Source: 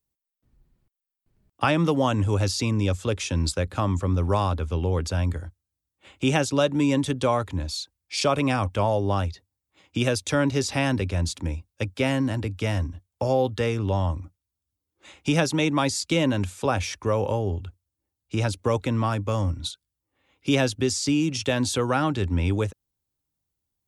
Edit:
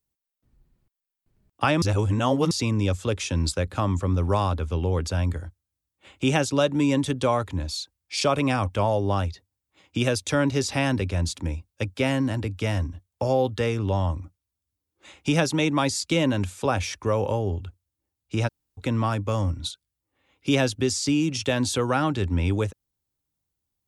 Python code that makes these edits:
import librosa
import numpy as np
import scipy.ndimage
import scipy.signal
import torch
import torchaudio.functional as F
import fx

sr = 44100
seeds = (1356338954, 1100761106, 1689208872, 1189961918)

y = fx.edit(x, sr, fx.reverse_span(start_s=1.82, length_s=0.69),
    fx.room_tone_fill(start_s=18.48, length_s=0.3, crossfade_s=0.02), tone=tone)